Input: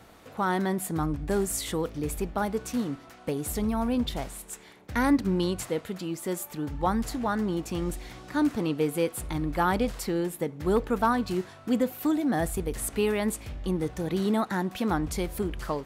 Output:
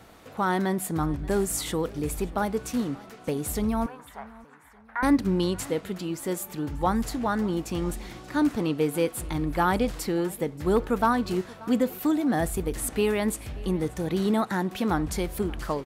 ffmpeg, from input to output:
-filter_complex "[0:a]asettb=1/sr,asplit=3[a][b][c];[a]atrim=end=3.864[d];[b]atrim=start=3.86:end=5.03,asetpts=PTS-STARTPTS,afade=t=in:d=0.004:c=qsin,afade=t=out:st=1.166:d=0.004:c=qsin,asuperpass=centerf=1200:order=4:qfactor=1.3[e];[c]atrim=start=5.026[f];[d][e]acrossfade=d=0.004:c1=hsin:c2=qsin[g];[g][f]acrossfade=d=0.004:c1=qsin:c2=hsin,asplit=2[h][i];[i]aecho=0:1:582|1164|1746:0.0841|0.0328|0.0128[j];[h][j]amix=inputs=2:normalize=0,volume=1.5dB"

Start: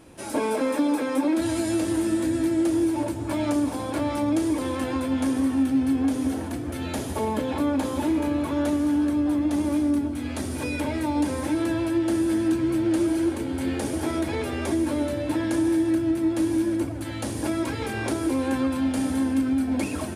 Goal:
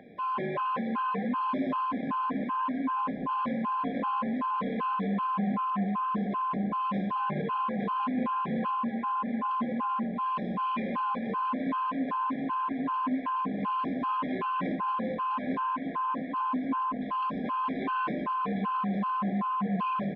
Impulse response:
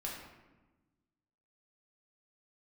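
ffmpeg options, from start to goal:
-filter_complex "[0:a]asplit=2[a][b];[b]adelay=1166,volume=-6dB,highshelf=f=4k:g=-26.2[c];[a][c]amix=inputs=2:normalize=0,asoftclip=type=hard:threshold=-28.5dB,aeval=exprs='val(0)+0.0355*sin(2*PI*1100*n/s)':c=same,highpass=f=220:t=q:w=0.5412,highpass=f=220:t=q:w=1.307,lowpass=f=3.3k:t=q:w=0.5176,lowpass=f=3.3k:t=q:w=0.7071,lowpass=f=3.3k:t=q:w=1.932,afreqshift=-65,asplit=2[d][e];[1:a]atrim=start_sample=2205[f];[e][f]afir=irnorm=-1:irlink=0,volume=-2dB[g];[d][g]amix=inputs=2:normalize=0,afftfilt=real='re*gt(sin(2*PI*2.6*pts/sr)*(1-2*mod(floor(b*sr/1024/810),2)),0)':imag='im*gt(sin(2*PI*2.6*pts/sr)*(1-2*mod(floor(b*sr/1024/810),2)),0)':win_size=1024:overlap=0.75,volume=-3.5dB"

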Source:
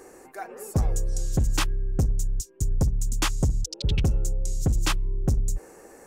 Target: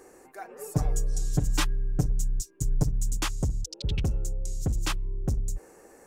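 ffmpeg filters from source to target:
-filter_complex "[0:a]asettb=1/sr,asplit=3[a][b][c];[a]atrim=end=0.584[d];[b]atrim=start=0.58:end=3.17,asetpts=PTS-STARTPTS,afade=t=in:d=0.004:c=qsin,afade=t=out:st=2.586:d=0.004:c=qsin,aecho=1:1:6.8:1,atrim=end_sample=114219[e];[c]atrim=start=3.166[f];[d][e]acrossfade=d=0.004:c1=hsin:c2=qsin[g];[g][f]acrossfade=d=0.004:c1=qsin:c2=hsin,volume=-4.5dB"

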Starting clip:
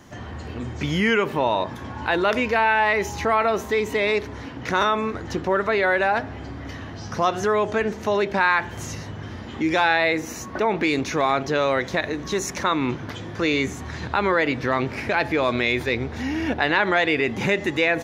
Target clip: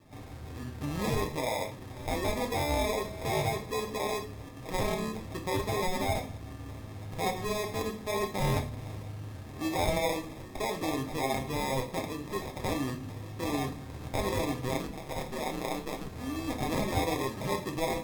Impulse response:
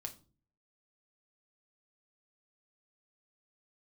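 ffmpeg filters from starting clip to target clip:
-filter_complex "[0:a]acrusher=samples=30:mix=1:aa=0.000001,asplit=3[a][b][c];[a]afade=t=out:st=14.77:d=0.02[d];[b]aeval=exprs='val(0)*sin(2*PI*75*n/s)':c=same,afade=t=in:st=14.77:d=0.02,afade=t=out:st=16.05:d=0.02[e];[c]afade=t=in:st=16.05:d=0.02[f];[d][e][f]amix=inputs=3:normalize=0[g];[1:a]atrim=start_sample=2205,asetrate=37926,aresample=44100[h];[g][h]afir=irnorm=-1:irlink=0,volume=-8dB"

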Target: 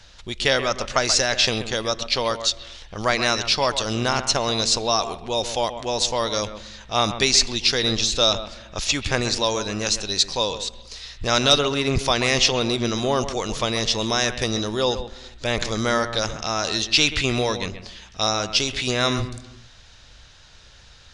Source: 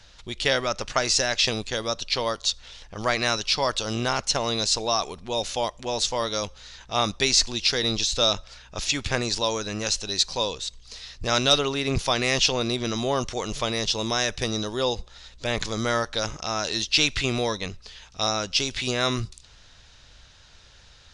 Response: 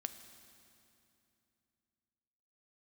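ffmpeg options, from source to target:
-filter_complex "[0:a]asplit=2[a][b];[b]lowpass=f=3.2k:w=0.5412,lowpass=f=3.2k:w=1.3066[c];[1:a]atrim=start_sample=2205,afade=t=out:st=0.37:d=0.01,atrim=end_sample=16758,adelay=131[d];[c][d]afir=irnorm=-1:irlink=0,volume=-8.5dB[e];[a][e]amix=inputs=2:normalize=0,volume=3dB"

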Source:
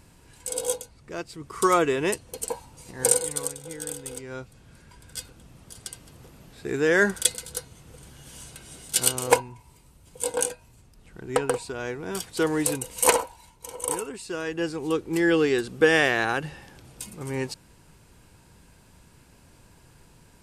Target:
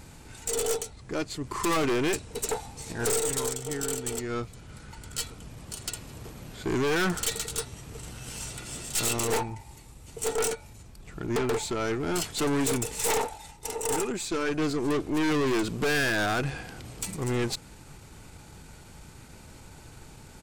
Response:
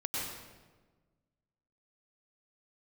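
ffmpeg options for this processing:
-af "aeval=exprs='(tanh(39.8*val(0)+0.4)-tanh(0.4))/39.8':c=same,asetrate=40440,aresample=44100,atempo=1.09051,volume=8dB"

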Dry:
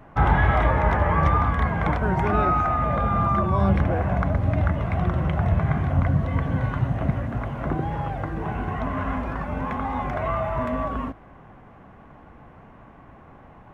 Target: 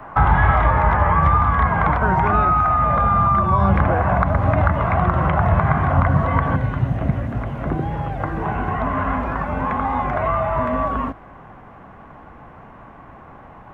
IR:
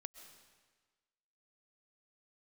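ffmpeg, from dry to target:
-filter_complex "[0:a]acrossover=split=3200[a][b];[b]acompressor=threshold=-59dB:ratio=4:attack=1:release=60[c];[a][c]amix=inputs=2:normalize=0,asetnsamples=n=441:p=0,asendcmd='6.56 equalizer g -2;8.2 equalizer g 5',equalizer=f=1.1k:t=o:w=1.7:g=13,acrossover=split=200|3000[d][e][f];[e]acompressor=threshold=-20dB:ratio=6[g];[d][g][f]amix=inputs=3:normalize=0,volume=3.5dB"

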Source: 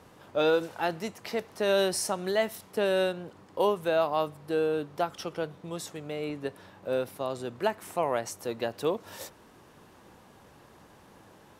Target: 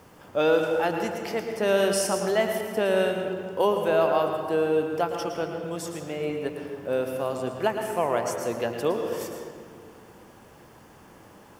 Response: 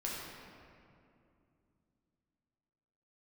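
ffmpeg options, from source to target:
-filter_complex "[0:a]bandreject=f=3.9k:w=5.2,acrusher=bits=10:mix=0:aa=0.000001,asplit=2[a][b];[1:a]atrim=start_sample=2205,asetrate=57330,aresample=44100,adelay=111[c];[b][c]afir=irnorm=-1:irlink=0,volume=-4.5dB[d];[a][d]amix=inputs=2:normalize=0,volume=2.5dB"

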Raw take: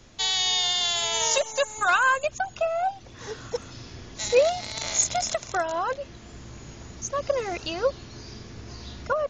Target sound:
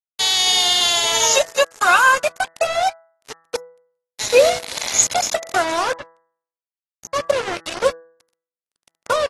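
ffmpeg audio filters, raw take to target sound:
-filter_complex "[0:a]aeval=exprs='sgn(val(0))*max(abs(val(0))-0.0119,0)':c=same,asettb=1/sr,asplit=3[a][b][c];[a]atrim=end=5.834[d];[b]atrim=start=5.83:end=7.87,asetpts=PTS-STARTPTS,afade=t=in:d=0.004:c=qsin,afade=t=out:st=2.036:d=0.004:c=qsin,highshelf=f=2.5k:g=-6.5[e];[c]atrim=start=7.866[f];[d][e]acrossfade=d=0.004:c1=hsin:c2=qsin[g];[g][f]acrossfade=d=0.004:c1=qsin:c2=hsin,asplit=2[h][i];[i]adelay=346,lowpass=f=1.6k:p=1,volume=-21dB,asplit=2[j][k];[k]adelay=346,lowpass=f=1.6k:p=1,volume=0.33[l];[h][j][l]amix=inputs=3:normalize=0,acrusher=bits=4:mix=0:aa=0.5,lowshelf=f=160:g=-10,bandreject=f=164.7:t=h:w=4,bandreject=f=329.4:t=h:w=4,bandreject=f=494.1:t=h:w=4,bandreject=f=658.8:t=h:w=4,bandreject=f=823.5:t=h:w=4,bandreject=f=988.2:t=h:w=4,bandreject=f=1.1529k:t=h:w=4,bandreject=f=1.3176k:t=h:w=4,bandreject=f=1.4823k:t=h:w=4,bandreject=f=1.647k:t=h:w=4,bandreject=f=1.8117k:t=h:w=4,bandreject=f=1.9764k:t=h:w=4,volume=8.5dB" -ar 32000 -c:a aac -b:a 32k

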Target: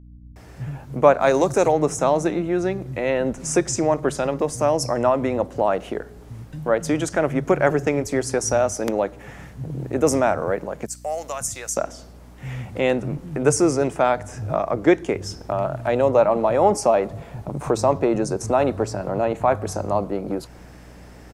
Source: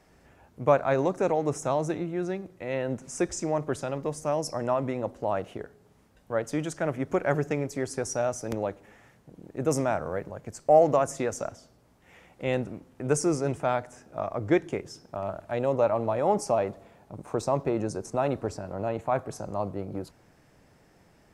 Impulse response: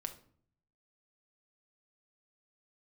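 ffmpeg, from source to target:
-filter_complex "[0:a]asettb=1/sr,asplit=3[a][b][c];[a]atrim=end=10.504[d];[b]atrim=start=10.5:end=11.41,asetpts=PTS-STARTPTS,afade=t=in:d=0.004:c=qsin,afade=t=out:st=0.906:d=0.004:c=qsin,aderivative[e];[c]atrim=start=11.406[f];[d][e]acrossfade=d=0.004:c1=hsin:c2=qsin[g];[g][f]acrossfade=d=0.004:c1=qsin:c2=hsin,asplit=2[h][i];[i]acompressor=threshold=-38dB:ratio=6,volume=3dB[j];[h][j]amix=inputs=2:normalize=0,asplit=3[k][l][m];[k]afade=t=out:st=0.84:d=0.02[n];[l]bass=f=250:g=-3,treble=f=4k:g=11,afade=t=in:st=0.84:d=0.02,afade=t=out:st=1.35:d=0.02[o];[m]afade=t=in:st=1.35:d=0.02[p];[n][o][p]amix=inputs=3:normalize=0,acrossover=split=150[q][r];[r]adelay=360[s];[q][s]amix=inputs=2:normalize=0,aeval=exprs='val(0)+0.00316*(sin(2*PI*60*n/s)+sin(2*PI*2*60*n/s)/2+sin(2*PI*3*60*n/s)/3+sin(2*PI*4*60*n/s)/4+sin(2*PI*5*60*n/s)/5)':c=same,volume=6dB"

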